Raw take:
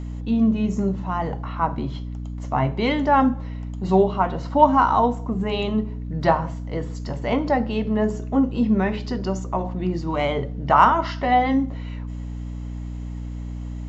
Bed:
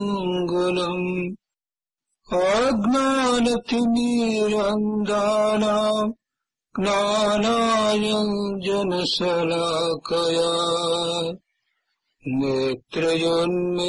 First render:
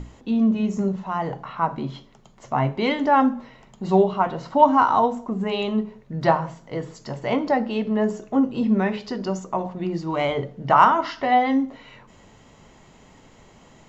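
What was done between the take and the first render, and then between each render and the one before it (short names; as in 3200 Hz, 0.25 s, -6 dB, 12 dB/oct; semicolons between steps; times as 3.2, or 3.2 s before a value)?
notches 60/120/180/240/300 Hz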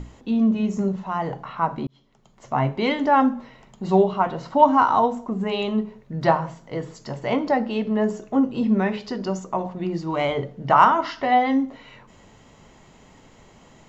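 1.87–2.56 fade in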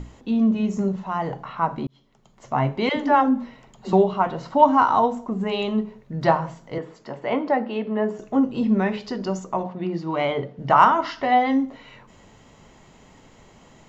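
2.89–3.93 dispersion lows, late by 86 ms, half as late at 350 Hz; 6.78–8.19 three-band isolator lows -14 dB, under 200 Hz, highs -14 dB, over 3400 Hz; 9.63–10.59 BPF 120–4600 Hz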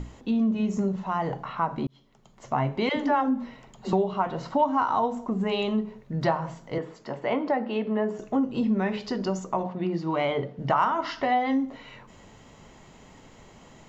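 compressor 2.5:1, threshold -23 dBFS, peak gain reduction 10 dB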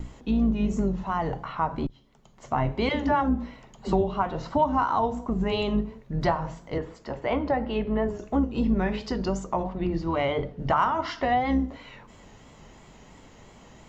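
octaver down 2 oct, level -5 dB; vibrato 2.9 Hz 52 cents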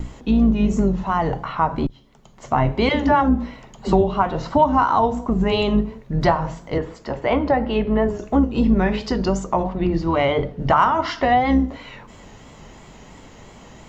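gain +7 dB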